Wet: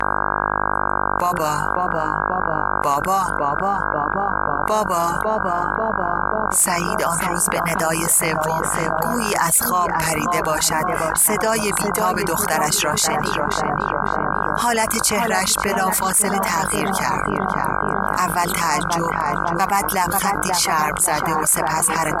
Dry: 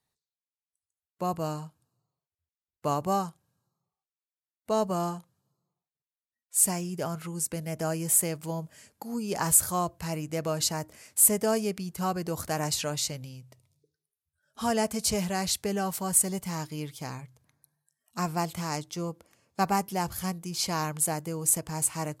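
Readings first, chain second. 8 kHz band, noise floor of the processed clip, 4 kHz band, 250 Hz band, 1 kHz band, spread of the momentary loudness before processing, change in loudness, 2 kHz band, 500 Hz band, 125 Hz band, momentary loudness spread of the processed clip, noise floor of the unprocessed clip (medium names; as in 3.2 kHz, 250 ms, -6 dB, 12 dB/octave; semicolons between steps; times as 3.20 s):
+8.0 dB, -23 dBFS, +9.5 dB, +7.5 dB, +16.5 dB, 14 LU, +9.5 dB, +21.0 dB, +10.5 dB, +6.5 dB, 5 LU, under -85 dBFS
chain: on a send: filtered feedback delay 542 ms, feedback 73%, low-pass 900 Hz, level -3.5 dB; on the sum: mains buzz 50 Hz, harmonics 32, -40 dBFS -2 dB/octave; vibrato 0.56 Hz 32 cents; hard clipper -16.5 dBFS, distortion -19 dB; graphic EQ 125/1000/2000 Hz -5/+10/+11 dB; reverb removal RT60 0.63 s; peaking EQ 10 kHz +12 dB 1.5 oct; de-hum 176.4 Hz, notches 3; level flattener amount 70%; trim -6 dB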